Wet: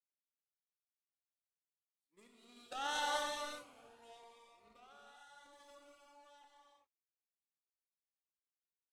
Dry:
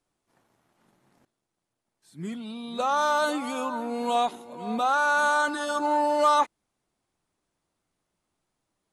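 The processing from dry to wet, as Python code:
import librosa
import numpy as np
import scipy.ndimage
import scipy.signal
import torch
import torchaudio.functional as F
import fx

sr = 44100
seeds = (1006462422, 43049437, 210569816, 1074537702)

p1 = fx.doppler_pass(x, sr, speed_mps=10, closest_m=3.7, pass_at_s=2.91)
p2 = scipy.signal.sosfilt(scipy.signal.butter(4, 320.0, 'highpass', fs=sr, output='sos'), p1)
p3 = fx.over_compress(p2, sr, threshold_db=-45.0, ratio=-0.5)
p4 = p2 + (p3 * librosa.db_to_amplitude(-3.0))
p5 = fx.power_curve(p4, sr, exponent=2.0)
p6 = fx.rev_gated(p5, sr, seeds[0], gate_ms=430, shape='flat', drr_db=-0.5)
p7 = fx.notch_cascade(p6, sr, direction='rising', hz=0.86)
y = p7 * librosa.db_to_amplitude(-6.5)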